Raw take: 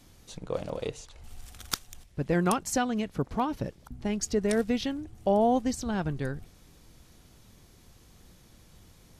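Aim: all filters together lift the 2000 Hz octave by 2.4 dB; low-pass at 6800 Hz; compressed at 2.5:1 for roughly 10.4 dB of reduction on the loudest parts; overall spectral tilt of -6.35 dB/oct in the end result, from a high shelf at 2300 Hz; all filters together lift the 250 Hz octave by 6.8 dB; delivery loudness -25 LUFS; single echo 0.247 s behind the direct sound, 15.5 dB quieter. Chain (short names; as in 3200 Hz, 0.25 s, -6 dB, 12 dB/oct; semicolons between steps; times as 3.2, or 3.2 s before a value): LPF 6800 Hz; bell 250 Hz +8 dB; bell 2000 Hz +5 dB; high shelf 2300 Hz -4 dB; compressor 2.5:1, threshold -32 dBFS; echo 0.247 s -15.5 dB; gain +9.5 dB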